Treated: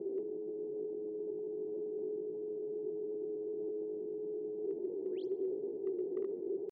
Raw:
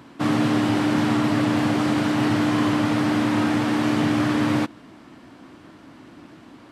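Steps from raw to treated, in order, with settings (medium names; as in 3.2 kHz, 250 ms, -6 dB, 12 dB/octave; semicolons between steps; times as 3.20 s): elliptic band-stop 600–8100 Hz, stop band 70 dB; compressor with a negative ratio -35 dBFS, ratio -1; painted sound rise, 5.07–5.28 s, 490–5400 Hz -47 dBFS; vowel filter i; pitch shift +6 st; hard clipper -32.5 dBFS, distortion -39 dB; distance through air 310 m; bucket-brigade echo 66 ms, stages 2048, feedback 60%, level -23 dB; trim +3.5 dB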